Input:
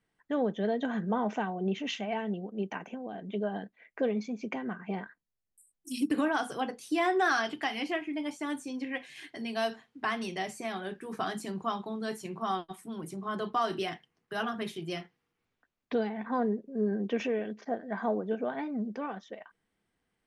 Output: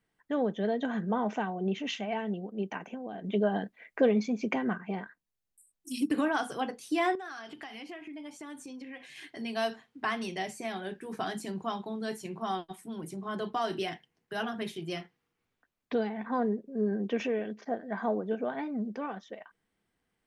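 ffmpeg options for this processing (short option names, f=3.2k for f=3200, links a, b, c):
-filter_complex "[0:a]asettb=1/sr,asplit=3[a][b][c];[a]atrim=end=3.244[d];[b]atrim=start=3.24:end=4.78,asetpts=PTS-STARTPTS,afade=t=in:d=0.004:c=qsin,afade=t=out:st=1.536:d=0.004:c=qsin,acontrast=34[e];[c]atrim=start=4.776[f];[d][e]acrossfade=d=0.004:c1=hsin:c2=qsin[g];[g][f]acrossfade=d=0.004:c1=qsin:c2=hsin,asettb=1/sr,asplit=3[h][i][j];[h]atrim=end=7.154[k];[i]atrim=start=7.15:end=9.37,asetpts=PTS-STARTPTS,afade=t=in:d=0.004:c=qsin,afade=t=out:st=2.216:d=0.004:c=qsin,acompressor=threshold=-41dB:ratio=5:attack=3.2:release=140:knee=1:detection=peak[l];[j]atrim=start=9.366[m];[k][l]acrossfade=d=0.004:c1=hsin:c2=qsin[n];[n][m]acrossfade=d=0.004:c1=qsin:c2=hsin,asettb=1/sr,asplit=3[o][p][q];[o]atrim=end=10.334[r];[p]atrim=start=10.33:end=14.8,asetpts=PTS-STARTPTS,afade=t=in:d=0.004:c=qsin,afade=t=out:st=4.466:d=0.004:c=qsin,equalizer=f=1.2k:t=o:w=0.29:g=-6.5[s];[q]atrim=start=14.796[t];[r][s]acrossfade=d=0.004:c1=hsin:c2=qsin[u];[u][t]acrossfade=d=0.004:c1=qsin:c2=hsin"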